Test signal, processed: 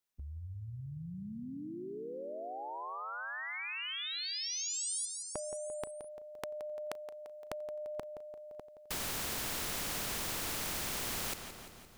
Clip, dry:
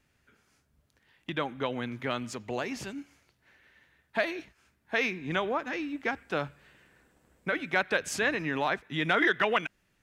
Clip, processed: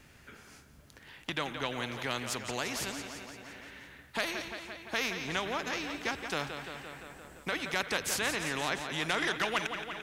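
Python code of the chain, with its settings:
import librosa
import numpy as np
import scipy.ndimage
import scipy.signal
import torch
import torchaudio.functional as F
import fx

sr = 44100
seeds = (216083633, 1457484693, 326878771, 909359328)

p1 = x + fx.echo_feedback(x, sr, ms=172, feedback_pct=57, wet_db=-14.5, dry=0)
p2 = fx.spectral_comp(p1, sr, ratio=2.0)
y = p2 * librosa.db_to_amplitude(-3.5)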